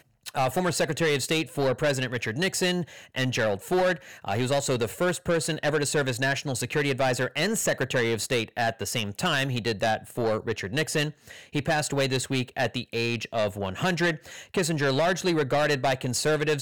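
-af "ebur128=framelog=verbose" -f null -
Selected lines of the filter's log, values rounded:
Integrated loudness:
  I:         -26.4 LUFS
  Threshold: -36.4 LUFS
Loudness range:
  LRA:         1.8 LU
  Threshold: -46.6 LUFS
  LRA low:   -27.6 LUFS
  LRA high:  -25.8 LUFS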